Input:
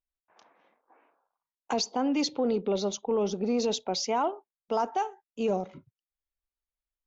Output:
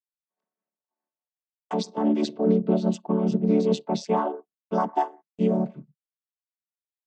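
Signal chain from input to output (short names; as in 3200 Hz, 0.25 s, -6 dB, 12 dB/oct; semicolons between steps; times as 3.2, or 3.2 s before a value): chord vocoder major triad, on D3; gate -58 dBFS, range -29 dB; tremolo 4.8 Hz, depth 39%; gain +7.5 dB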